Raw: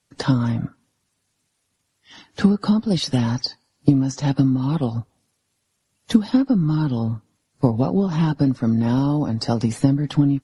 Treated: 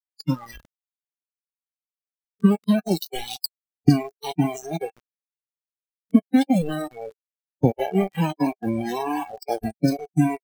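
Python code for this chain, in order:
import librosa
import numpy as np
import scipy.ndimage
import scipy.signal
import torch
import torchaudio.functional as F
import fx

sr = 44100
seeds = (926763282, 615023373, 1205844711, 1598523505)

y = fx.echo_stepped(x, sr, ms=153, hz=990.0, octaves=1.4, feedback_pct=70, wet_db=-0.5)
y = np.where(np.abs(y) >= 10.0 ** (-17.5 / 20.0), y, 0.0)
y = fx.noise_reduce_blind(y, sr, reduce_db=28)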